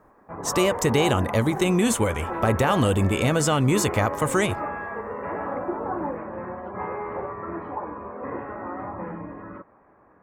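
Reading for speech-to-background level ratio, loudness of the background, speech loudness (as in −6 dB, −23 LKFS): 9.5 dB, −32.0 LKFS, −22.5 LKFS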